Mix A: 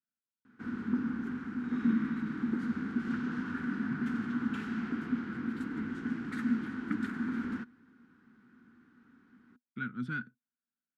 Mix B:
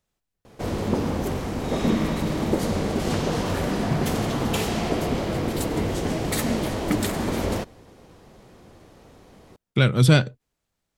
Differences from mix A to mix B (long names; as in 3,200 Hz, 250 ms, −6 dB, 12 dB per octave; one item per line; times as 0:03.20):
speech +8.5 dB
master: remove pair of resonant band-passes 600 Hz, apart 2.6 octaves